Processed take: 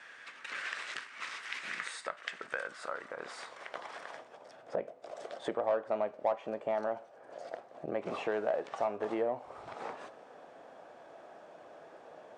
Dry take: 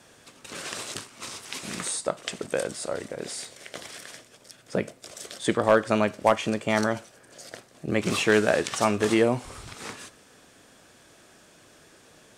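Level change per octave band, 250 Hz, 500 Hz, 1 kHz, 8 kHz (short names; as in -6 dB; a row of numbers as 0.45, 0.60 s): -16.5 dB, -9.0 dB, -8.5 dB, under -20 dB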